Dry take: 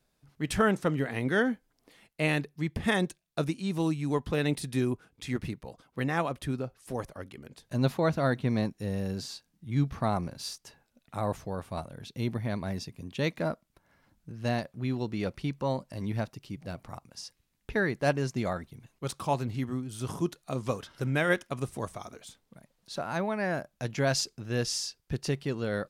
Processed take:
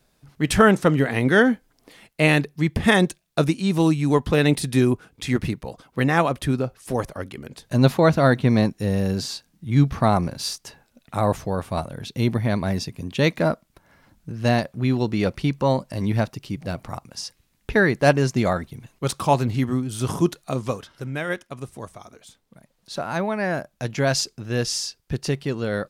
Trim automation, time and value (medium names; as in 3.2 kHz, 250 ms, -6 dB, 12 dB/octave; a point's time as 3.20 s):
20.38 s +10 dB
21.06 s -1 dB
22.08 s -1 dB
22.95 s +6 dB